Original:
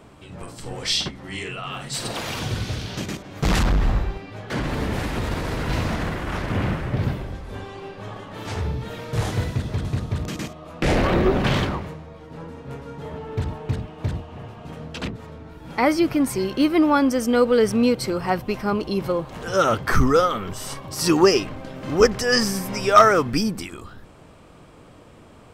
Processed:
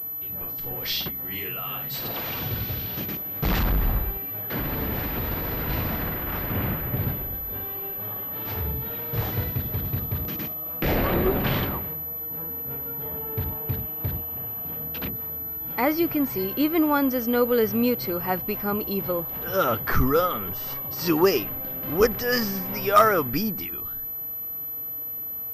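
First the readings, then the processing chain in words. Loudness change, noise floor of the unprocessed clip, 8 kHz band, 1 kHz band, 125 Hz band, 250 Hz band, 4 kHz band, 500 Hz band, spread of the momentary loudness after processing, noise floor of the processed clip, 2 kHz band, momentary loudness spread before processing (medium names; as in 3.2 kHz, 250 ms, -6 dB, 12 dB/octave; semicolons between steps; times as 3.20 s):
-3.0 dB, -47 dBFS, -10.5 dB, -4.0 dB, -4.0 dB, -4.0 dB, -6.0 dB, -4.0 dB, 8 LU, -33 dBFS, -4.0 dB, 18 LU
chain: class-D stage that switches slowly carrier 12 kHz; trim -4 dB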